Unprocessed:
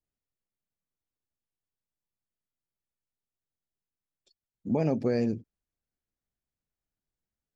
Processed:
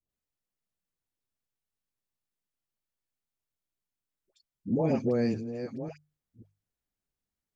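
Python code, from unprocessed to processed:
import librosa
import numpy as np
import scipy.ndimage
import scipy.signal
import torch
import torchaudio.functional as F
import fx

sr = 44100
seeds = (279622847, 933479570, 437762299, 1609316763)

y = fx.reverse_delay(x, sr, ms=535, wet_db=-9.5)
y = fx.hum_notches(y, sr, base_hz=50, count=3)
y = fx.dispersion(y, sr, late='highs', ms=96.0, hz=880.0)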